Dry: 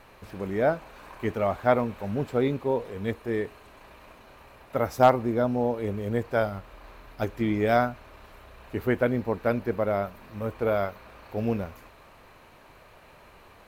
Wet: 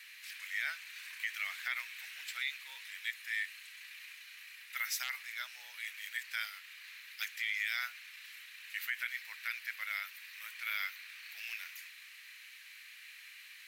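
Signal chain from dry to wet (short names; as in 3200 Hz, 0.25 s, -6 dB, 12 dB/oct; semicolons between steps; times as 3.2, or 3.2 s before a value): Chebyshev high-pass 1900 Hz, order 4; limiter -32 dBFS, peak gain reduction 11.5 dB; gain +8 dB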